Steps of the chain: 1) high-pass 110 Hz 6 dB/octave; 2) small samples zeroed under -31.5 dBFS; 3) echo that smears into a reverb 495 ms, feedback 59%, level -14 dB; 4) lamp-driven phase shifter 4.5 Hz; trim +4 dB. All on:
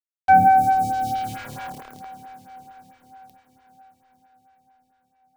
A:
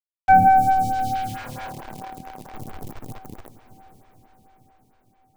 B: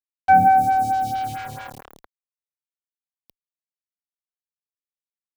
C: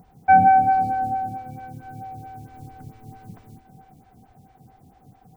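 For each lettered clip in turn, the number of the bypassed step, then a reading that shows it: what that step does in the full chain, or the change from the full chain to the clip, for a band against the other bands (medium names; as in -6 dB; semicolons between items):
1, 125 Hz band +2.5 dB; 3, momentary loudness spread change -2 LU; 2, distortion -17 dB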